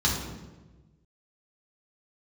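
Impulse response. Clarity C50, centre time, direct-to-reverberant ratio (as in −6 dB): 3.0 dB, 51 ms, −4.5 dB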